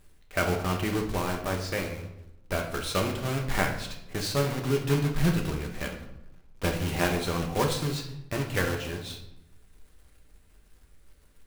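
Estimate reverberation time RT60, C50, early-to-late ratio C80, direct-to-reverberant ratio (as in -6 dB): 0.85 s, 7.0 dB, 10.5 dB, 1.5 dB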